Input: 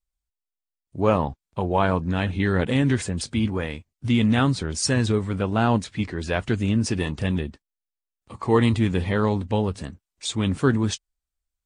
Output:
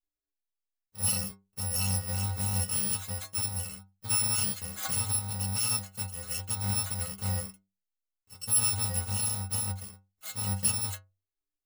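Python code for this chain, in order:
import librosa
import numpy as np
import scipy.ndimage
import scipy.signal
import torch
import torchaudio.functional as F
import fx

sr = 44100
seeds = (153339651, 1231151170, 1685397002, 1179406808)

y = fx.bit_reversed(x, sr, seeds[0], block=128)
y = fx.stiff_resonator(y, sr, f0_hz=95.0, decay_s=0.33, stiffness=0.008)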